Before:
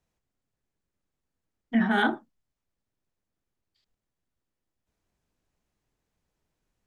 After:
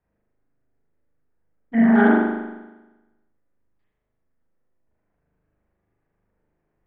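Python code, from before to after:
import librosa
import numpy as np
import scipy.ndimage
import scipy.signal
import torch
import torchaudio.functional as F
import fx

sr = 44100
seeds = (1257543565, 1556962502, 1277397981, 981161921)

y = fx.high_shelf(x, sr, hz=2500.0, db=-10.5)
y = fx.filter_lfo_lowpass(y, sr, shape='square', hz=8.7, low_hz=570.0, high_hz=1900.0, q=1.7)
y = fx.rev_spring(y, sr, rt60_s=1.1, pass_ms=(39,), chirp_ms=70, drr_db=-6.5)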